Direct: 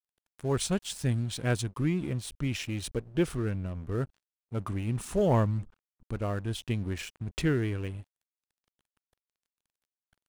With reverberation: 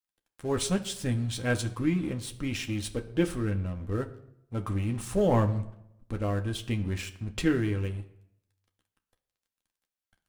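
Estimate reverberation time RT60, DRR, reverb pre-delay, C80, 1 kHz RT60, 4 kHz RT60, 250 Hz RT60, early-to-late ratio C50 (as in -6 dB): 0.80 s, 4.0 dB, 4 ms, 17.5 dB, 0.75 s, 0.60 s, 0.85 s, 14.5 dB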